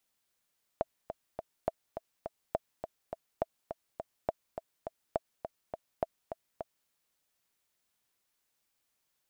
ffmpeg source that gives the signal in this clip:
-f lavfi -i "aevalsrc='pow(10,(-15.5-8.5*gte(mod(t,3*60/207),60/207))/20)*sin(2*PI*654*mod(t,60/207))*exp(-6.91*mod(t,60/207)/0.03)':d=6.08:s=44100"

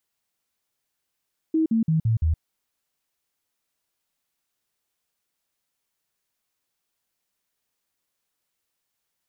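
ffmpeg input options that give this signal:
-f lavfi -i "aevalsrc='0.133*clip(min(mod(t,0.17),0.12-mod(t,0.17))/0.005,0,1)*sin(2*PI*319*pow(2,-floor(t/0.17)/2)*mod(t,0.17))':d=0.85:s=44100"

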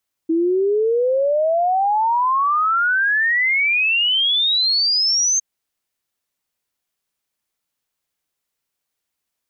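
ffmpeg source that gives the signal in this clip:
-f lavfi -i "aevalsrc='0.188*clip(min(t,5.11-t)/0.01,0,1)*sin(2*PI*320*5.11/log(6400/320)*(exp(log(6400/320)*t/5.11)-1))':d=5.11:s=44100"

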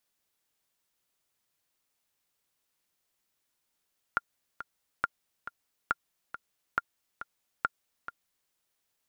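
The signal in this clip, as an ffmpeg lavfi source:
-f lavfi -i "aevalsrc='pow(10,(-12.5-12.5*gte(mod(t,2*60/138),60/138))/20)*sin(2*PI*1400*mod(t,60/138))*exp(-6.91*mod(t,60/138)/0.03)':d=4.34:s=44100"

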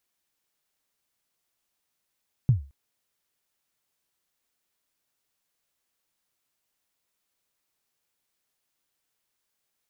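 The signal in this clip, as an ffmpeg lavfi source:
-f lavfi -i "aevalsrc='0.251*pow(10,-3*t/0.32)*sin(2*PI*(140*0.124/log(69/140)*(exp(log(69/140)*min(t,0.124)/0.124)-1)+69*max(t-0.124,0)))':d=0.22:s=44100"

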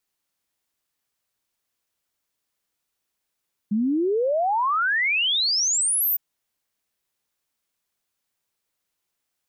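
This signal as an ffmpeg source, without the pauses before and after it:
-f lavfi -i "aevalsrc='0.112*clip(min(t,2.46-t)/0.01,0,1)*sin(2*PI*200*2.46/log(15000/200)*(exp(log(15000/200)*t/2.46)-1))':d=2.46:s=44100"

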